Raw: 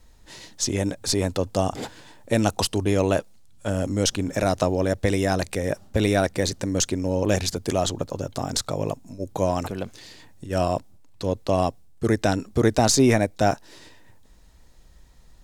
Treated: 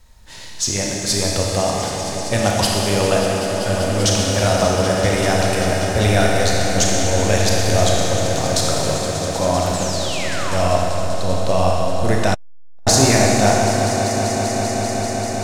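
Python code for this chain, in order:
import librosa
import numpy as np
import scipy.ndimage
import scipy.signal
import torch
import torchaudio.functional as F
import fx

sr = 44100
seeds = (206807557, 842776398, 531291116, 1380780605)

p1 = fx.peak_eq(x, sr, hz=320.0, db=-8.5, octaves=1.1)
p2 = p1 + fx.echo_swell(p1, sr, ms=195, loudest=5, wet_db=-14.0, dry=0)
p3 = fx.spec_paint(p2, sr, seeds[0], shape='fall', start_s=9.74, length_s=0.98, low_hz=520.0, high_hz=8300.0, level_db=-36.0)
p4 = fx.rev_schroeder(p3, sr, rt60_s=2.8, comb_ms=26, drr_db=-2.0)
p5 = fx.transformer_sat(p4, sr, knee_hz=280.0, at=(12.34, 12.87))
y = F.gain(torch.from_numpy(p5), 4.0).numpy()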